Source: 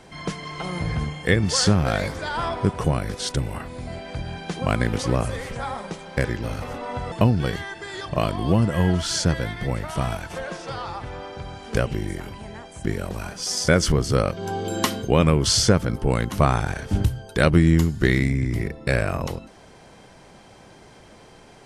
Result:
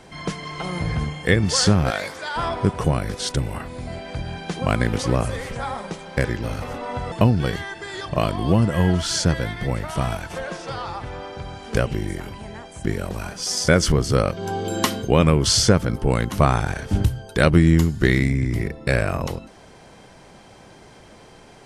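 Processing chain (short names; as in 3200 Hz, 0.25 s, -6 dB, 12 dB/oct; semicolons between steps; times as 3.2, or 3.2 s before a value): 1.9–2.36 HPF 730 Hz 6 dB/oct; gain +1.5 dB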